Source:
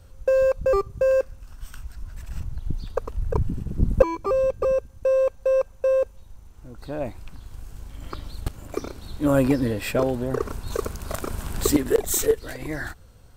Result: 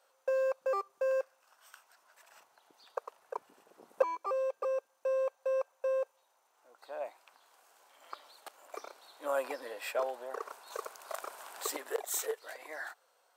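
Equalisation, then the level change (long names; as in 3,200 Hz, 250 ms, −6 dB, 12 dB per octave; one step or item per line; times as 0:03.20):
high-pass filter 670 Hz 24 dB per octave
tilt shelving filter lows +5.5 dB
−5.5 dB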